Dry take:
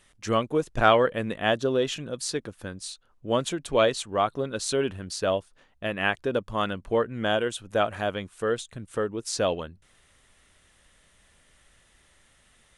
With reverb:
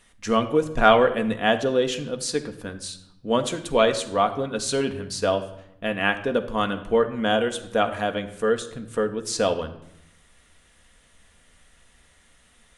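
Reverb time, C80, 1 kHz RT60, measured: 0.80 s, 14.5 dB, 0.80 s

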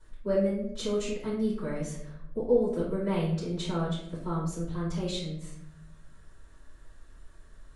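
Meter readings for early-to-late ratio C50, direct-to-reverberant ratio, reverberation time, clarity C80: 2.5 dB, −10.5 dB, 0.70 s, 6.5 dB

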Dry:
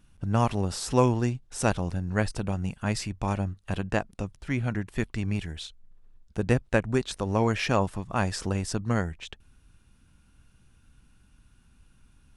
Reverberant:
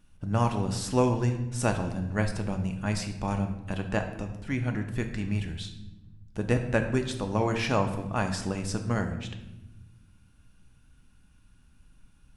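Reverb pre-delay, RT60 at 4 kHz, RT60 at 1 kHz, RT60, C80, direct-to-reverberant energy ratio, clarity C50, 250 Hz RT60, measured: 3 ms, 0.75 s, 0.85 s, 1.0 s, 11.0 dB, 5.0 dB, 9.0 dB, 1.8 s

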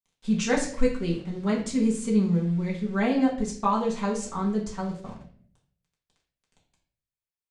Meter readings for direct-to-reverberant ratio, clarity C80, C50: −4.5 dB, 11.0 dB, 7.0 dB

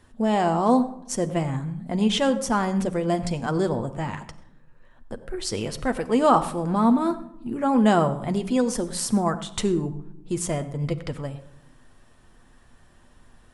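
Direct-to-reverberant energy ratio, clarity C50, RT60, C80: 7.5 dB, 13.5 dB, non-exponential decay, 15.0 dB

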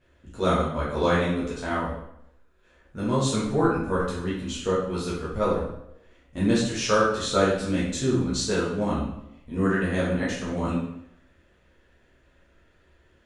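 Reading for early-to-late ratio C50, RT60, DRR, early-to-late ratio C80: 1.5 dB, 0.75 s, −9.0 dB, 5.5 dB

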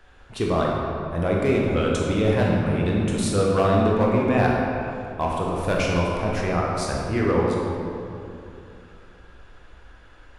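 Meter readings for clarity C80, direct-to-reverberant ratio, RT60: 1.0 dB, −3.0 dB, 2.8 s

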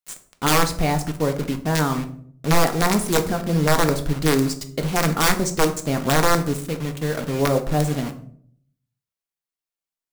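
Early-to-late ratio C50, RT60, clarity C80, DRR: 12.5 dB, 0.60 s, 17.0 dB, 6.0 dB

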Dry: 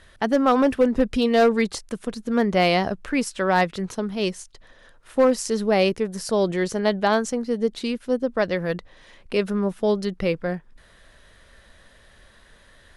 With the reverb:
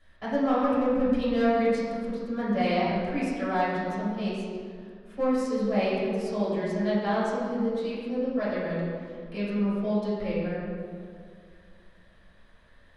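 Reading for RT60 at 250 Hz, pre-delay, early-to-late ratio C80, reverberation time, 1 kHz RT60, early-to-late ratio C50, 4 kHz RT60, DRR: 2.7 s, 3 ms, 0.0 dB, 2.1 s, 2.0 s, −2.0 dB, 1.2 s, −11.5 dB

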